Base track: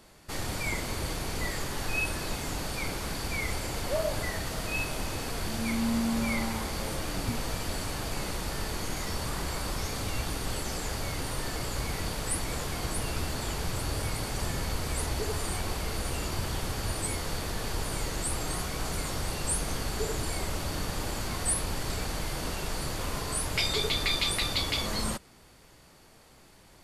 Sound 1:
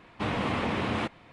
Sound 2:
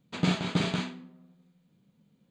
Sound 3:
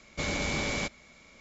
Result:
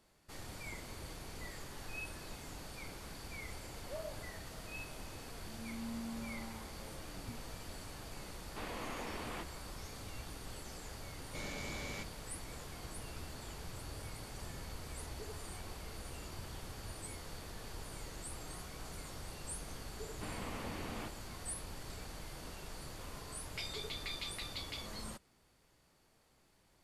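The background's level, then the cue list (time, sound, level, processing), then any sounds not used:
base track −14.5 dB
0:08.36: mix in 1 −13.5 dB + high-pass filter 280 Hz
0:11.16: mix in 3 −13.5 dB
0:20.01: mix in 1 −15.5 dB
not used: 2

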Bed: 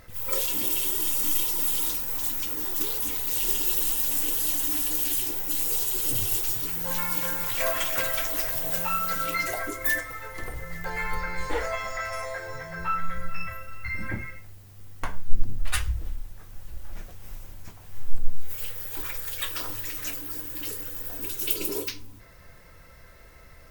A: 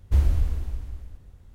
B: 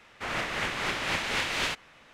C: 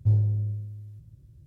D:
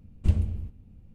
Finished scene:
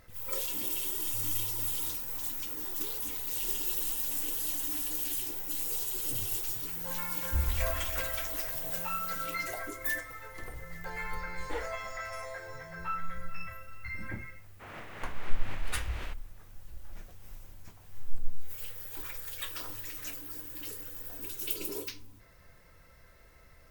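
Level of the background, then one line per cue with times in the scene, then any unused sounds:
bed −7.5 dB
0:01.08: mix in C −16 dB + downward compressor, threshold −29 dBFS
0:07.21: mix in A −10.5 dB
0:14.39: mix in B −12 dB + parametric band 5,300 Hz −10.5 dB 2.1 octaves
not used: D

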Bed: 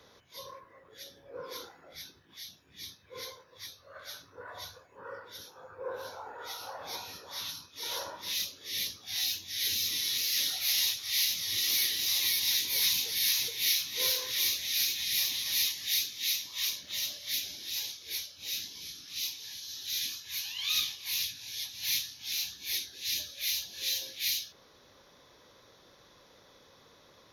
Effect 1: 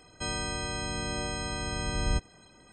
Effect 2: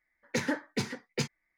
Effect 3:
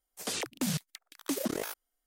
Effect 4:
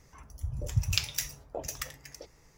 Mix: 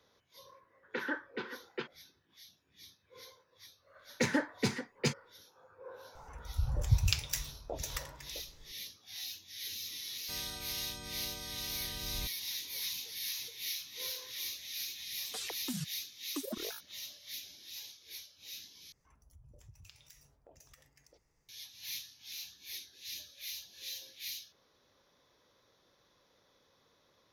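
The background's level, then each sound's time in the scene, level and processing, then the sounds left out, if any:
bed −11 dB
0:00.60: mix in 2 −6.5 dB + loudspeaker in its box 340–3,400 Hz, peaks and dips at 360 Hz +8 dB, 660 Hz −6 dB, 1,100 Hz +5 dB, 1,500 Hz +10 dB, 2,200 Hz −5 dB, 3,300 Hz +5 dB
0:03.86: mix in 2
0:06.15: mix in 4 −3.5 dB + low-shelf EQ 71 Hz +11.5 dB
0:10.08: mix in 1 −14 dB
0:15.07: mix in 3 −4.5 dB + spectral dynamics exaggerated over time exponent 2
0:18.92: overwrite with 4 −16 dB + downward compressor 2.5 to 1, threshold −42 dBFS

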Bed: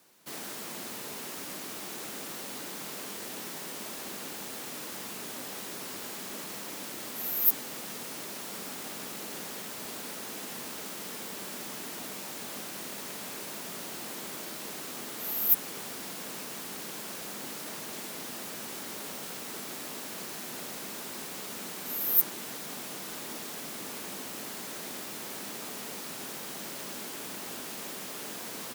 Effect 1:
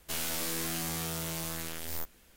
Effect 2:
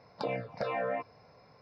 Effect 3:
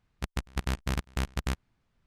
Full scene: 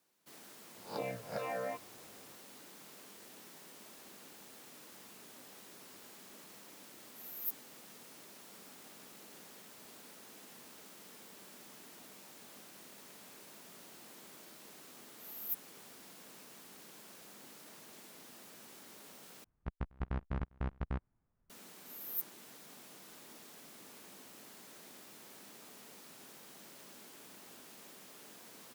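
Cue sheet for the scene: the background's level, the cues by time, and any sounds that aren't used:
bed −15 dB
0:00.75: mix in 2 −6.5 dB + peak hold with a rise ahead of every peak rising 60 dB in 0.35 s
0:19.44: overwrite with 3 −6.5 dB + low-pass filter 1,300 Hz
not used: 1

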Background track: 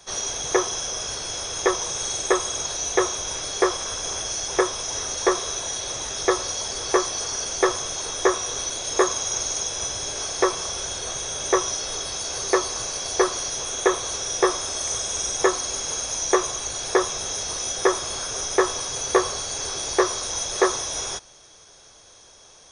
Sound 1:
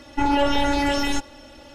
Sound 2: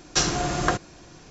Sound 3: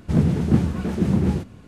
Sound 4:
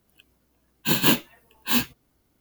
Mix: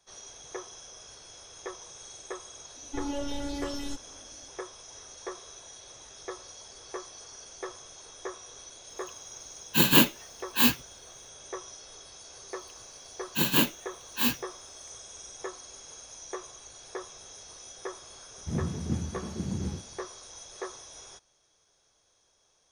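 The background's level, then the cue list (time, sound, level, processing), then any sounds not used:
background track −19 dB
0:02.76: mix in 1 −11.5 dB + flat-topped bell 1,400 Hz −9.5 dB 2.3 octaves
0:08.89: mix in 4
0:12.50: mix in 4 −4.5 dB
0:18.38: mix in 3 −14 dB + parametric band 87 Hz +6 dB 0.29 octaves
not used: 2

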